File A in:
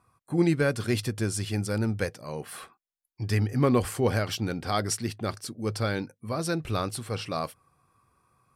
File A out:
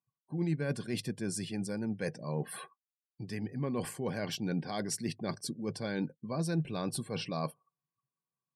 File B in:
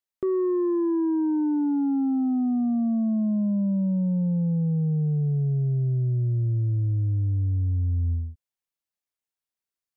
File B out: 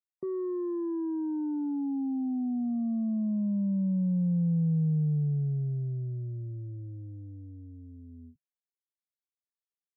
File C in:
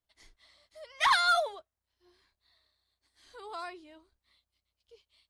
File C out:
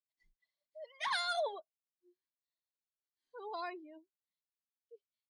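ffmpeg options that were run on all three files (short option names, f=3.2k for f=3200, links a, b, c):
-af "asuperstop=centerf=1300:order=4:qfactor=5.2,afftdn=nr=31:nf=-47,areverse,acompressor=threshold=-32dB:ratio=16,areverse,lowshelf=f=110:t=q:w=3:g=-12"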